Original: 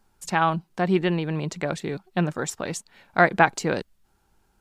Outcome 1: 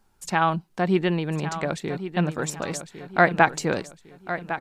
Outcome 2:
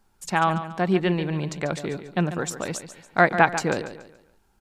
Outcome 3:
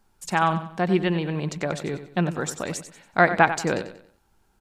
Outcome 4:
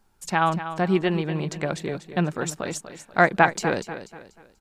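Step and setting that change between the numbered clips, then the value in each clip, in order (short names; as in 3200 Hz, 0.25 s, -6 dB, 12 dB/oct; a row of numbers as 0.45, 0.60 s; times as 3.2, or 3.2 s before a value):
feedback echo, time: 1105, 142, 93, 243 ms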